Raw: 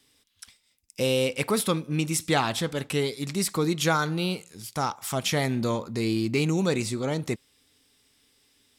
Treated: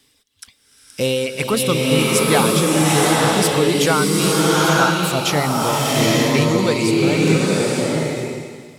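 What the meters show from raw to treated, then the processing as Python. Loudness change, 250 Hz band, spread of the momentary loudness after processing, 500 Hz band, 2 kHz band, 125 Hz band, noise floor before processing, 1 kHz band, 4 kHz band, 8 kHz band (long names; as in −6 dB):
+10.5 dB, +10.5 dB, 6 LU, +10.5 dB, +11.5 dB, +9.5 dB, −68 dBFS, +11.5 dB, +11.0 dB, +12.0 dB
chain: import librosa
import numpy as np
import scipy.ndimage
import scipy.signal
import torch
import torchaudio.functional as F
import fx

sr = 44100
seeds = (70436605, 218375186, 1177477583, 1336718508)

p1 = fx.dereverb_blind(x, sr, rt60_s=1.7)
p2 = np.clip(10.0 ** (20.5 / 20.0) * p1, -1.0, 1.0) / 10.0 ** (20.5 / 20.0)
p3 = p1 + F.gain(torch.from_numpy(p2), -6.5).numpy()
p4 = fx.rev_bloom(p3, sr, seeds[0], attack_ms=900, drr_db=-5.0)
y = F.gain(torch.from_numpy(p4), 3.0).numpy()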